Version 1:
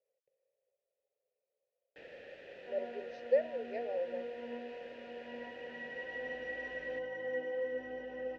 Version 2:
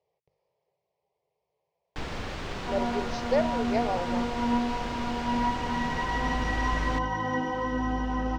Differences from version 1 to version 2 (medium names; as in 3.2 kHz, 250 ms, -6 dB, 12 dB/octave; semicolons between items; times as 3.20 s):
first sound +3.5 dB; master: remove vowel filter e